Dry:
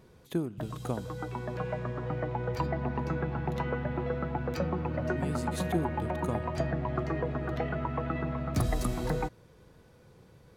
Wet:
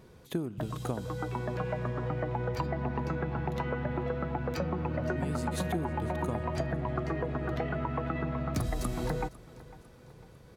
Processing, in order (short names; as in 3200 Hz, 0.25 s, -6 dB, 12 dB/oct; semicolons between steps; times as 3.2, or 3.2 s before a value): compressor 4:1, threshold -31 dBFS, peak gain reduction 7.5 dB; feedback echo 0.501 s, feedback 48%, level -20.5 dB; gain +2.5 dB